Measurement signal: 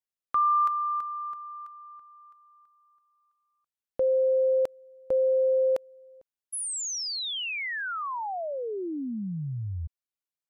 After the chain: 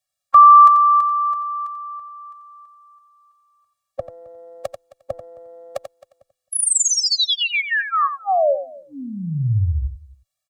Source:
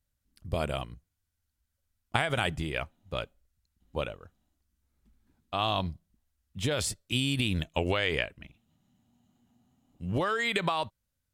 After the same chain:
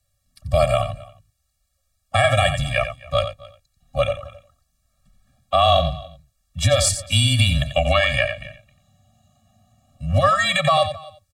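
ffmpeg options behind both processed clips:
ffmpeg -i in.wav -filter_complex "[0:a]equalizer=frequency=125:width_type=o:width=1:gain=10,equalizer=frequency=250:width_type=o:width=1:gain=-9,equalizer=frequency=500:width_type=o:width=1:gain=11,equalizer=frequency=1000:width_type=o:width=1:gain=8,equalizer=frequency=2000:width_type=o:width=1:gain=4,equalizer=frequency=4000:width_type=o:width=1:gain=6,equalizer=frequency=8000:width_type=o:width=1:gain=9,asplit=2[link_01][link_02];[link_02]aecho=0:1:265:0.0794[link_03];[link_01][link_03]amix=inputs=2:normalize=0,afreqshift=-18,highshelf=frequency=8600:gain=3.5,asplit=2[link_04][link_05];[link_05]aecho=0:1:89:0.316[link_06];[link_04][link_06]amix=inputs=2:normalize=0,alimiter=level_in=6.5dB:limit=-1dB:release=50:level=0:latency=1,afftfilt=real='re*eq(mod(floor(b*sr/1024/270),2),0)':imag='im*eq(mod(floor(b*sr/1024/270),2),0)':win_size=1024:overlap=0.75" out.wav

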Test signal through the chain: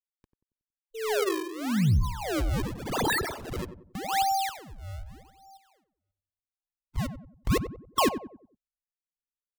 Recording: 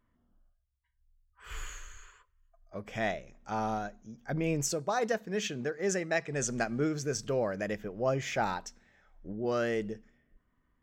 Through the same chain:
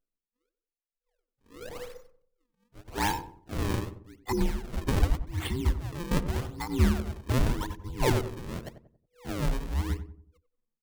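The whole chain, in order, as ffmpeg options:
ffmpeg -i in.wav -filter_complex "[0:a]afftfilt=real='real(if(between(b,1,1008),(2*floor((b-1)/24)+1)*24-b,b),0)':imag='imag(if(between(b,1,1008),(2*floor((b-1)/24)+1)*24-b,b),0)*if(between(b,1,1008),-1,1)':win_size=2048:overlap=0.75,lowpass=9300,anlmdn=0.00631,acrossover=split=120|3400[link_01][link_02][link_03];[link_01]dynaudnorm=framelen=340:gausssize=5:maxgain=10.5dB[link_04];[link_04][link_02][link_03]amix=inputs=3:normalize=0,acrusher=samples=36:mix=1:aa=0.000001:lfo=1:lforange=57.6:lforate=0.86,asoftclip=type=tanh:threshold=-17dB,tremolo=f=1.6:d=0.85,asplit=2[link_05][link_06];[link_06]adelay=92,lowpass=frequency=850:poles=1,volume=-9dB,asplit=2[link_07][link_08];[link_08]adelay=92,lowpass=frequency=850:poles=1,volume=0.42,asplit=2[link_09][link_10];[link_10]adelay=92,lowpass=frequency=850:poles=1,volume=0.42,asplit=2[link_11][link_12];[link_12]adelay=92,lowpass=frequency=850:poles=1,volume=0.42,asplit=2[link_13][link_14];[link_14]adelay=92,lowpass=frequency=850:poles=1,volume=0.42[link_15];[link_07][link_09][link_11][link_13][link_15]amix=inputs=5:normalize=0[link_16];[link_05][link_16]amix=inputs=2:normalize=0,volume=4dB" out.wav

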